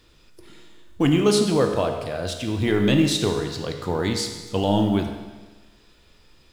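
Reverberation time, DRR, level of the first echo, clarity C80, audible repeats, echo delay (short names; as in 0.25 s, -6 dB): 1.3 s, 4.0 dB, none, 8.0 dB, none, none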